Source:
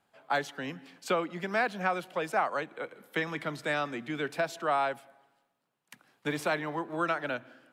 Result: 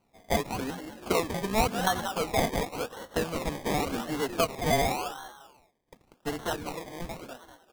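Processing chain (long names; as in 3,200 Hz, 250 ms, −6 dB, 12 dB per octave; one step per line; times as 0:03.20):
fade-out on the ending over 2.18 s
notch filter 550 Hz, Q 13
comb filter 4.3 ms, depth 47%
echo with shifted repeats 193 ms, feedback 35%, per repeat +47 Hz, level −8.5 dB
sample-and-hold swept by an LFO 25×, swing 60% 0.9 Hz
level +2 dB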